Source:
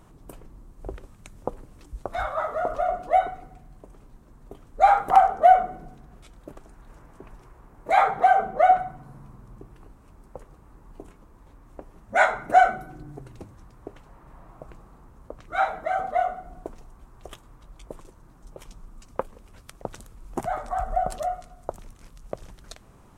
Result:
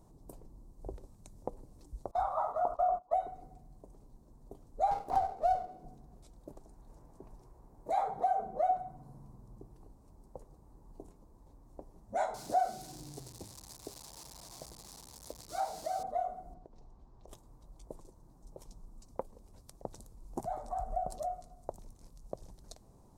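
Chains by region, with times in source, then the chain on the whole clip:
2.11–3.14 band shelf 1000 Hz +13 dB 1.1 oct + gate -26 dBFS, range -24 dB
4.91–5.84 low shelf 240 Hz -10.5 dB + running maximum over 9 samples
12.34–16.03 switching spikes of -21 dBFS + HPF 43 Hz + air absorption 53 m
16.54–17.28 Chebyshev low-pass 4100 Hz + compressor 10:1, threshold -42 dBFS
whole clip: band shelf 2000 Hz -14 dB; compressor 1.5:1, threshold -29 dBFS; gain -7 dB

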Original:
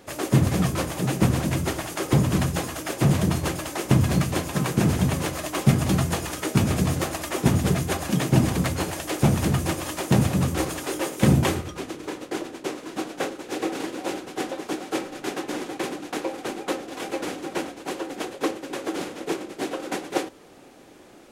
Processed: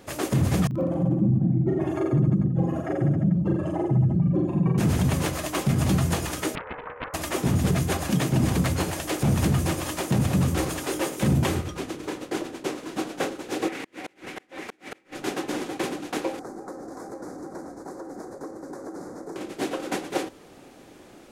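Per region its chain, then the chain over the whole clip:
0.67–4.78 spectral contrast raised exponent 2.9 + HPF 170 Hz + reverse bouncing-ball echo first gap 40 ms, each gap 1.15×, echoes 7, each echo -2 dB
6.55–7.14 brick-wall FIR band-pass 420–1700 Hz + fixed phaser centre 670 Hz, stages 6 + Doppler distortion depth 0.93 ms
13.68–15.15 bell 2100 Hz +12 dB 0.87 oct + flipped gate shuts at -17 dBFS, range -35 dB + compressor 2.5:1, threshold -34 dBFS
16.39–19.36 high shelf 9800 Hz -10.5 dB + compressor 5:1, threshold -34 dBFS + Butterworth band-stop 2900 Hz, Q 0.68
whole clip: tone controls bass +3 dB, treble 0 dB; limiter -13.5 dBFS

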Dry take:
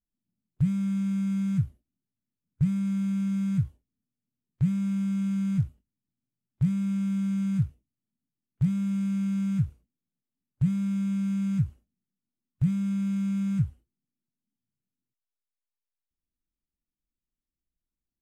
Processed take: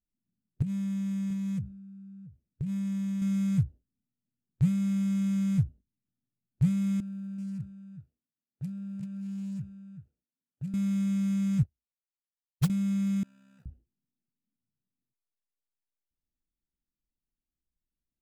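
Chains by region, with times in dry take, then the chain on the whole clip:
0.62–3.22 low shelf 99 Hz -6.5 dB + compressor 20:1, threshold -28 dBFS + echo 0.682 s -15.5 dB
7–10.74 HPF 600 Hz 6 dB/oct + echo 0.383 s -9 dB
11.63–12.7 short-mantissa float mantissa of 2-bit + upward expander 2.5:1, over -40 dBFS
13.23–13.66 G.711 law mismatch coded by mu + AM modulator 67 Hz, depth 45% + HPF 1200 Hz
whole clip: Wiener smoothing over 41 samples; high shelf 3400 Hz +8.5 dB

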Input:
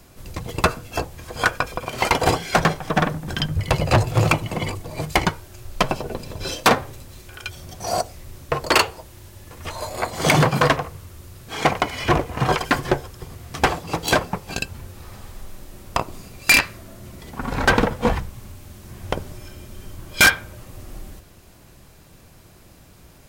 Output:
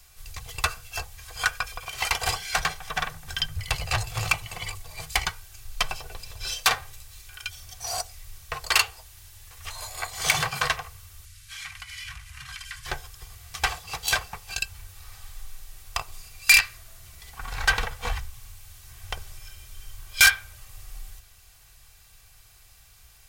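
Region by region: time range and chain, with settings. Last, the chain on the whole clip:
11.25–12.86 CVSD 64 kbps + Chebyshev band-stop 110–1700 Hz + compressor 3:1, threshold -33 dBFS
whole clip: passive tone stack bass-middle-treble 10-0-10; comb 2.6 ms, depth 40%

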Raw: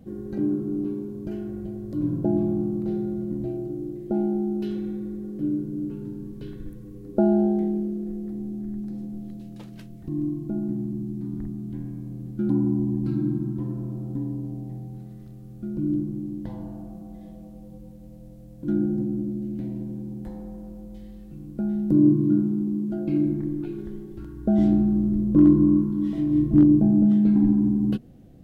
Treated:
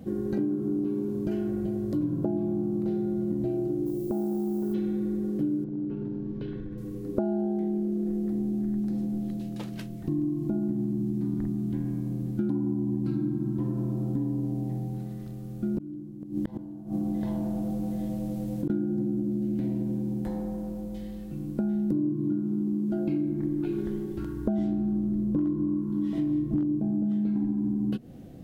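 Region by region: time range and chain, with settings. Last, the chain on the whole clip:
3.85–4.73 LPF 1200 Hz 24 dB/oct + compressor, threshold -28 dBFS + added noise violet -59 dBFS
5.64–6.78 compressor 4:1, threshold -34 dBFS + air absorption 230 m
15.74–18.7 echo 0.777 s -5 dB + flipped gate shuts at -23 dBFS, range -33 dB + fast leveller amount 50%
whole clip: low shelf 80 Hz -9.5 dB; compressor 10:1, threshold -31 dBFS; gain +6.5 dB

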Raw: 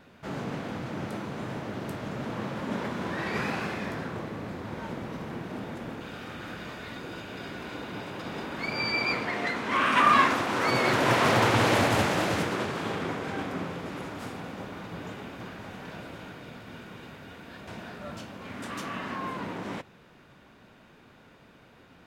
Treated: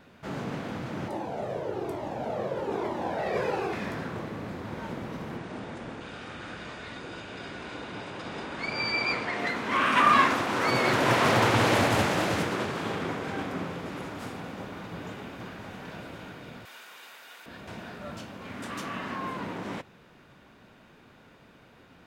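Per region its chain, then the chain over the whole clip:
1.08–3.73 band shelf 540 Hz +11.5 dB + cascading flanger falling 1.1 Hz
5.37–9.39 brick-wall FIR low-pass 10000 Hz + bell 190 Hz -3 dB 1.9 oct
16.65–17.46 HPF 840 Hz + high shelf 5600 Hz +12 dB
whole clip: dry

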